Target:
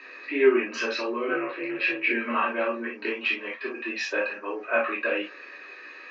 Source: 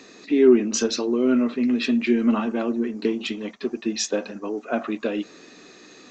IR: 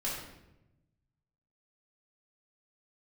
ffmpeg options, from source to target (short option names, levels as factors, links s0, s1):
-filter_complex "[0:a]asplit=3[s0][s1][s2];[s0]afade=t=out:st=1.27:d=0.02[s3];[s1]aeval=exprs='val(0)*sin(2*PI*97*n/s)':c=same,afade=t=in:st=1.27:d=0.02,afade=t=out:st=2.1:d=0.02[s4];[s2]afade=t=in:st=2.1:d=0.02[s5];[s3][s4][s5]amix=inputs=3:normalize=0,highpass=f=420:w=0.5412,highpass=f=420:w=1.3066,equalizer=f=440:t=q:w=4:g=-3,equalizer=f=710:t=q:w=4:g=-7,equalizer=f=1100:t=q:w=4:g=4,equalizer=f=1700:t=q:w=4:g=9,equalizer=f=2500:t=q:w=4:g=8,equalizer=f=3500:t=q:w=4:g=-10,lowpass=f=3800:w=0.5412,lowpass=f=3800:w=1.3066[s6];[1:a]atrim=start_sample=2205,atrim=end_sample=3087[s7];[s6][s7]afir=irnorm=-1:irlink=0"